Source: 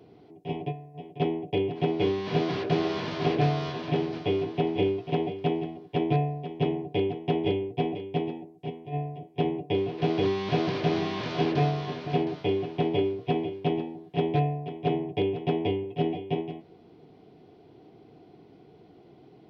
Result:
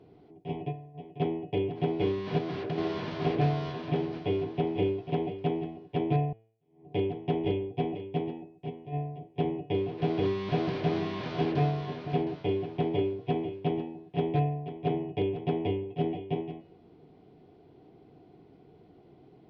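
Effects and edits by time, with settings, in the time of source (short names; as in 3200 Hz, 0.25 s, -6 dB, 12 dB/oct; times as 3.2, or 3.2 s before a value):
2.38–2.78 compressor 2.5:1, threshold -28 dBFS
6.33–6.93 fade in exponential
whole clip: LPF 3300 Hz 6 dB/oct; low shelf 70 Hz +9 dB; de-hum 111.5 Hz, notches 30; gain -3 dB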